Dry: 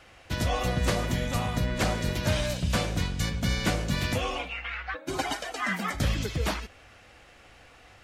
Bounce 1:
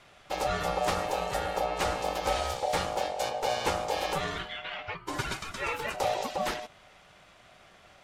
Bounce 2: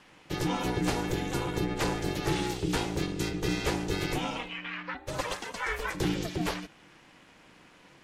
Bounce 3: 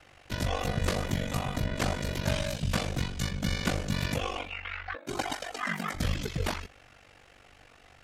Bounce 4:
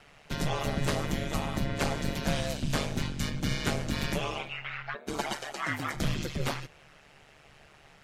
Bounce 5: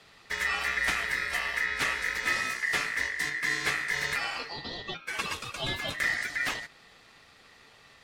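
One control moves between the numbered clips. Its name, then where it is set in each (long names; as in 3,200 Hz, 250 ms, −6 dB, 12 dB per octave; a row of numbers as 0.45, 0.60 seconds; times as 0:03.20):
ring modulation, frequency: 670, 240, 24, 73, 1,900 Hertz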